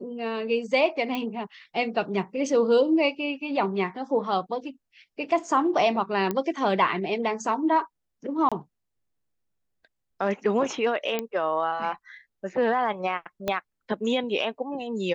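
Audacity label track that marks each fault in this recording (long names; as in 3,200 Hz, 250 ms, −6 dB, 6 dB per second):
1.150000	1.150000	click −17 dBFS
6.310000	6.310000	click −14 dBFS
8.490000	8.520000	drop-out 26 ms
11.190000	11.190000	click −13 dBFS
13.480000	13.480000	click −13 dBFS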